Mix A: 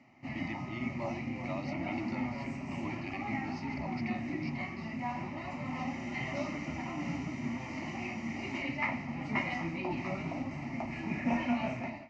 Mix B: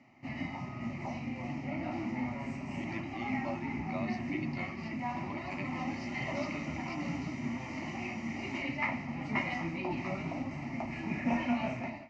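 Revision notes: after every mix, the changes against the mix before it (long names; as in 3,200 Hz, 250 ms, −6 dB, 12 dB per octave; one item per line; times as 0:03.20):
speech: entry +2.45 s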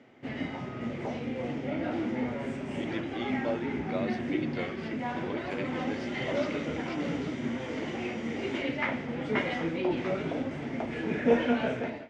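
master: remove phaser with its sweep stopped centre 2,300 Hz, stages 8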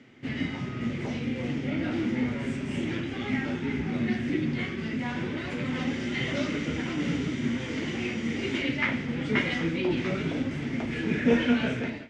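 background +7.5 dB
master: add parametric band 690 Hz −13 dB 1.7 octaves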